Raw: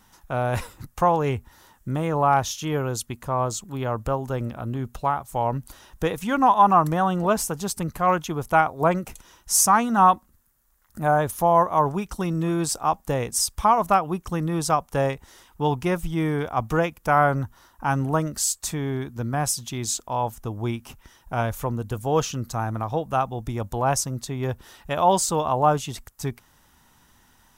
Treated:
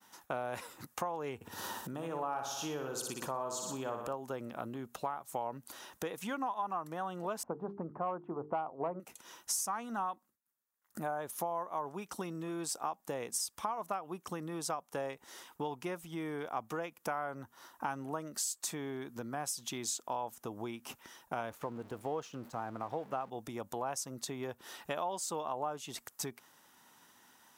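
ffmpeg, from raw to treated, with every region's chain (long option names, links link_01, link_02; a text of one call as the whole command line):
ffmpeg -i in.wav -filter_complex "[0:a]asettb=1/sr,asplit=3[link_01][link_02][link_03];[link_01]atrim=end=1.354[link_04];[link_02]atrim=start=1.35:end=4.14,asetpts=PTS-STARTPTS,afade=type=in:duration=0.004:curve=qsin,afade=type=out:start_time=2.786:duration=0.004:curve=qsin,bandreject=frequency=2100:width=6.5,aecho=1:1:60|120|180|240|300|360|420:0.473|0.256|0.138|0.0745|0.0402|0.0217|0.0117,atrim=end_sample=123039,acompressor=mode=upward:threshold=-26dB:ratio=2.5:attack=3.2:release=140:knee=2.83:detection=peak[link_05];[link_03]atrim=start=4.136[link_06];[link_04][link_05]acrossfade=duration=0.004:curve1=hsin:curve2=qsin[link_07];[link_07][link_06]acrossfade=duration=0.004:curve1=qsin:curve2=hsin,asettb=1/sr,asplit=3[link_08][link_09][link_10];[link_08]atrim=end=7.434[link_11];[link_09]atrim=start=7.43:end=9,asetpts=PTS-STARTPTS,afade=type=in:duration=0.004:curve=qsin,afade=type=out:start_time=1.566:duration=0.004:curve=qsin,lowpass=frequency=1100:width=0.5412,lowpass=frequency=1100:width=1.3066,bandreject=frequency=50:width_type=h:width=6,bandreject=frequency=100:width_type=h:width=6,bandreject=frequency=150:width_type=h:width=6,bandreject=frequency=200:width_type=h:width=6,bandreject=frequency=250:width_type=h:width=6,bandreject=frequency=300:width_type=h:width=6,bandreject=frequency=350:width_type=h:width=6,bandreject=frequency=400:width_type=h:width=6,bandreject=frequency=450:width_type=h:width=6,acontrast=78[link_12];[link_10]atrim=start=8.996[link_13];[link_11][link_12]acrossfade=duration=0.004:curve1=hsin:curve2=qsin[link_14];[link_14][link_13]acrossfade=duration=0.004:curve1=qsin:curve2=hsin,asettb=1/sr,asplit=3[link_15][link_16][link_17];[link_15]atrim=end=21.504[link_18];[link_16]atrim=start=21.5:end=23.3,asetpts=PTS-STARTPTS,afade=type=in:duration=0.004:curve=qsin,afade=type=out:start_time=1.796:duration=0.004:curve=qsin,aeval=exprs='val(0)+0.5*0.0178*sgn(val(0))':channel_layout=same,highshelf=frequency=3000:gain=-12,agate=range=-33dB:threshold=-33dB:ratio=3:release=100:detection=peak[link_19];[link_17]atrim=start=23.296[link_20];[link_18][link_19]acrossfade=duration=0.004:curve1=hsin:curve2=qsin[link_21];[link_21][link_20]acrossfade=duration=0.004:curve1=qsin:curve2=hsin,acompressor=threshold=-33dB:ratio=12,highpass=260,agate=range=-33dB:threshold=-56dB:ratio=3:detection=peak" out.wav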